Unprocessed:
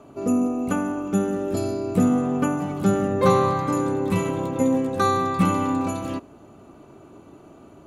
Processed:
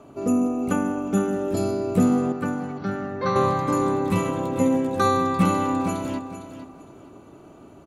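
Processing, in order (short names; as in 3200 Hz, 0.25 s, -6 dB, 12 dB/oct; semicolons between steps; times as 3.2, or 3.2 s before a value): 2.32–3.36 rippled Chebyshev low-pass 6000 Hz, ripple 9 dB; feedback echo 0.457 s, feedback 23%, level -11 dB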